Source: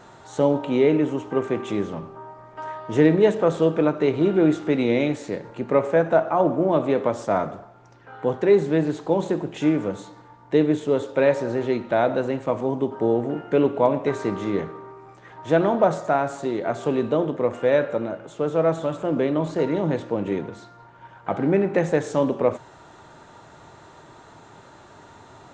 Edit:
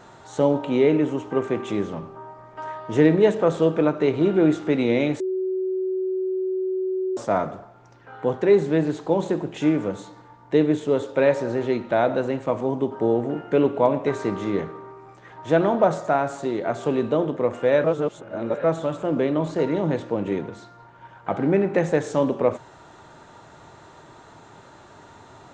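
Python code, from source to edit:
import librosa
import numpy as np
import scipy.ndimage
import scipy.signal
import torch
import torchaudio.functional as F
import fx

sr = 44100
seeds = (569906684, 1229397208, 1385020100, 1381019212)

y = fx.edit(x, sr, fx.bleep(start_s=5.2, length_s=1.97, hz=375.0, db=-22.0),
    fx.reverse_span(start_s=17.84, length_s=0.8), tone=tone)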